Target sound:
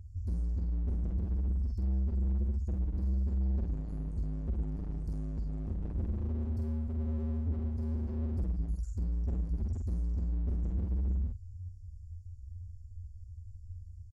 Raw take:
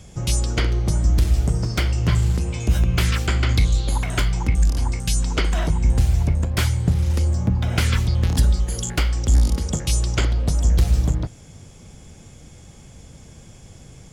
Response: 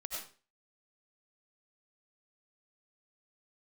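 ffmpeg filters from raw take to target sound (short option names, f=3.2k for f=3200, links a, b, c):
-filter_complex "[0:a]aecho=1:1:13|55:0.531|0.398,acompressor=threshold=-18dB:ratio=6,equalizer=f=110:t=o:w=0.33:g=15,asplit=2[a][b];[1:a]atrim=start_sample=2205[c];[b][c]afir=irnorm=-1:irlink=0,volume=-6.5dB[d];[a][d]amix=inputs=2:normalize=0,afftfilt=real='re*(1-between(b*sr/4096,100,4200))':imag='im*(1-between(b*sr/4096,100,4200))':win_size=4096:overlap=0.75,aeval=exprs='0.355*(cos(1*acos(clip(val(0)/0.355,-1,1)))-cos(1*PI/2))+0.00562*(cos(4*acos(clip(val(0)/0.355,-1,1)))-cos(4*PI/2))':c=same,firequalizer=gain_entry='entry(180,0);entry(590,-11);entry(920,-19);entry(1400,0);entry(3000,-28);entry(5800,-30)':delay=0.05:min_phase=1,asoftclip=type=hard:threshold=-22.5dB,asplit=2[e][f];[f]adelay=47,volume=-4dB[g];[e][g]amix=inputs=2:normalize=0,asoftclip=type=tanh:threshold=-19.5dB,volume=-6.5dB"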